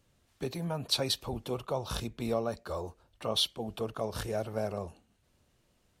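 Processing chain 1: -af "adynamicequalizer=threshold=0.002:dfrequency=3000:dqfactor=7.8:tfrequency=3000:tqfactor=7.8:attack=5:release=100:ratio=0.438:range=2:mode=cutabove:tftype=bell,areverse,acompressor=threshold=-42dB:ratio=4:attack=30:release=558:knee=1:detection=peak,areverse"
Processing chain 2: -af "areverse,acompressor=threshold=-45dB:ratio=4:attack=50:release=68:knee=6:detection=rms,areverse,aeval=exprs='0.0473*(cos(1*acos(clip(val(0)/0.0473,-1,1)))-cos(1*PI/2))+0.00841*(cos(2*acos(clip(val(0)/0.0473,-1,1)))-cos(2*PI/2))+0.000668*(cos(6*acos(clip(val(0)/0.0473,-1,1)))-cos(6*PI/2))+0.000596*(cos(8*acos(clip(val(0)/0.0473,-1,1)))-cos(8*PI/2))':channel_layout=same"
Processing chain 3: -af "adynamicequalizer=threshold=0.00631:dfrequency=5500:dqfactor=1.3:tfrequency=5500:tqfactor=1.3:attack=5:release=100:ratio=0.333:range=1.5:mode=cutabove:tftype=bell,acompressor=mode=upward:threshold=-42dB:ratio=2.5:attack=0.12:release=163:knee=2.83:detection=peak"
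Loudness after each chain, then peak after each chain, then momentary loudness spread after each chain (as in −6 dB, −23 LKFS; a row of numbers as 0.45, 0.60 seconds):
−44.0, −44.0, −34.0 LKFS; −26.0, −24.5, −15.0 dBFS; 7, 6, 10 LU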